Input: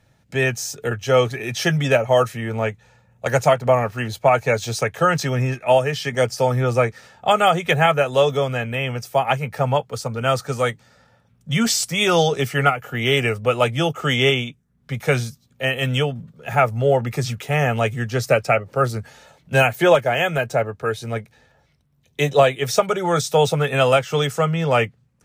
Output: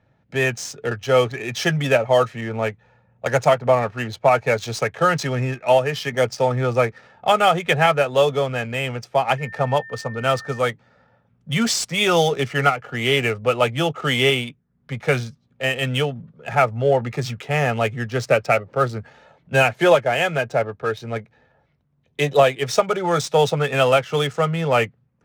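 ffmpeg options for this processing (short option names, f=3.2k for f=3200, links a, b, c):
-filter_complex "[0:a]lowshelf=f=84:g=-8.5,adynamicsmooth=sensitivity=6:basefreq=2.4k,asettb=1/sr,asplit=3[a][b][c];[a]atrim=end=9.384[d];[b]atrim=start=9.38:end=10.59,asetpts=PTS-STARTPTS,afade=t=in:d=0.004:c=qsin,afade=t=out:st=1.206:d=0.004:c=qsin,aeval=exprs='val(0)+0.0158*sin(2*PI*1800*n/s)':c=same[e];[c]atrim=start=10.586[f];[d][e]acrossfade=d=0.004:c1=hsin:c2=qsin[g];[g][f]acrossfade=d=0.004:c1=qsin:c2=hsin"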